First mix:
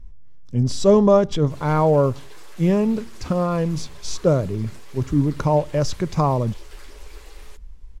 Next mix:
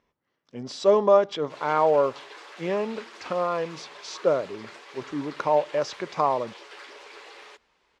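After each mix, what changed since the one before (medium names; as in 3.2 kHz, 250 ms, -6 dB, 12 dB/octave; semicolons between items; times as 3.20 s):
background +5.5 dB; master: add band-pass 510–3900 Hz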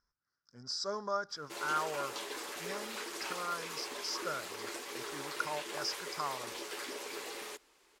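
speech: add two resonant band-passes 2.7 kHz, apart 1.8 oct; master: remove band-pass 510–3900 Hz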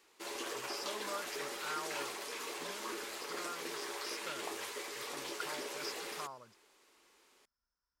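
speech -8.0 dB; background: entry -1.30 s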